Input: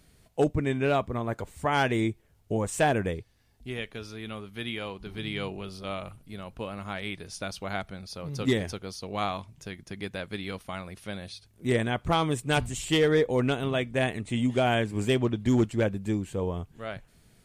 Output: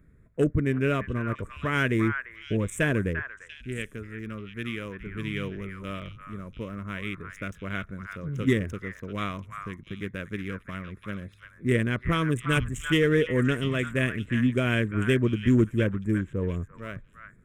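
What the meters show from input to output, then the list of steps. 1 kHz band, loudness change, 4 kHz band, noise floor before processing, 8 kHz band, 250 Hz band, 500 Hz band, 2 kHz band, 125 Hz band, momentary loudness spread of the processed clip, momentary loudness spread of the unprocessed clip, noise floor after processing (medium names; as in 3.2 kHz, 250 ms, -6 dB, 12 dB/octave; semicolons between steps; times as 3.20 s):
-5.0 dB, +1.0 dB, -3.0 dB, -62 dBFS, -4.5 dB, +2.5 dB, -1.5 dB, +3.0 dB, +3.5 dB, 14 LU, 14 LU, -55 dBFS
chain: local Wiener filter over 15 samples; static phaser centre 1.9 kHz, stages 4; on a send: repeats whose band climbs or falls 345 ms, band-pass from 1.4 kHz, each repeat 1.4 oct, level -4 dB; on the sum: trim +4 dB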